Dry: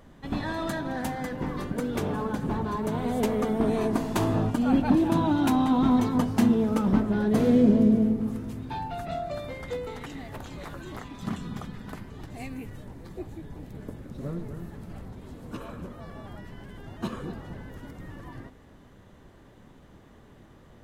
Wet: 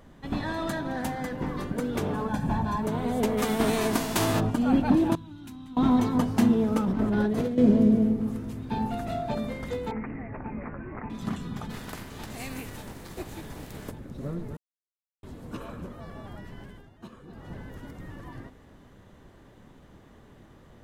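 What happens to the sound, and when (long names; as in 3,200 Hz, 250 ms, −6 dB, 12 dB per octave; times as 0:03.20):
0:02.28–0:02.83: comb filter 1.2 ms, depth 64%
0:03.37–0:04.39: spectral envelope flattened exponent 0.6
0:05.15–0:05.77: guitar amp tone stack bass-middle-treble 6-0-2
0:06.84–0:07.58: compressor whose output falls as the input rises −26 dBFS
0:08.13–0:08.76: delay throw 580 ms, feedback 75%, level −1.5 dB
0:09.91–0:11.10: Butterworth low-pass 2,500 Hz 96 dB per octave
0:11.69–0:13.90: compressing power law on the bin magnitudes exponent 0.65
0:14.57–0:15.23: silence
0:16.63–0:17.54: duck −13 dB, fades 0.27 s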